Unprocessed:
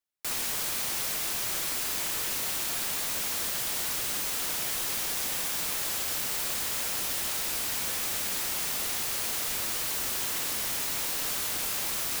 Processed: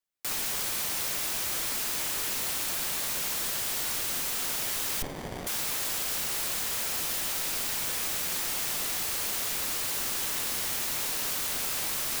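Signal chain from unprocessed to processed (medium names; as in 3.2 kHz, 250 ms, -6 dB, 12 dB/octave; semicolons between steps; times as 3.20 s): frequency shift -26 Hz; 5.02–5.47 s: sliding maximum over 33 samples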